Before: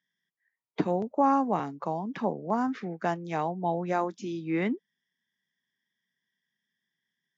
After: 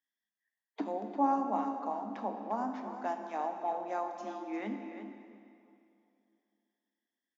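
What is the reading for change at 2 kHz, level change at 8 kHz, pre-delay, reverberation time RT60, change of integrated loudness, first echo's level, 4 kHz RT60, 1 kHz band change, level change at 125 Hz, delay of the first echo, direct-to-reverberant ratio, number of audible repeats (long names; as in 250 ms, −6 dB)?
−9.5 dB, can't be measured, 9 ms, 2.6 s, −6.0 dB, −10.0 dB, 2.1 s, −4.0 dB, below −15 dB, 351 ms, 3.5 dB, 1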